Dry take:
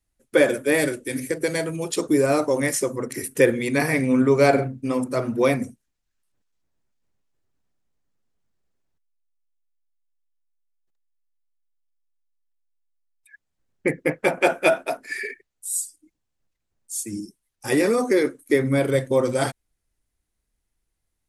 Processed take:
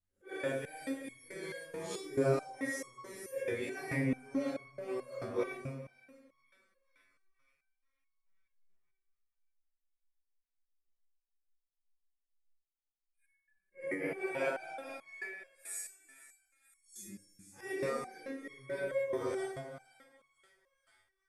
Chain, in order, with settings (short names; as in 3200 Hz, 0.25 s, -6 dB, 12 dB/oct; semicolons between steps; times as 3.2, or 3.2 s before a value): phase scrambler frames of 0.2 s; high shelf 4100 Hz -7 dB; limiter -12 dBFS, peak gain reduction 7 dB; bell 260 Hz -3.5 dB 1.2 oct; split-band echo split 1300 Hz, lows 0.169 s, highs 0.493 s, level -15 dB; reverb RT60 2.3 s, pre-delay 58 ms, DRR 14.5 dB; stepped resonator 4.6 Hz 95–1100 Hz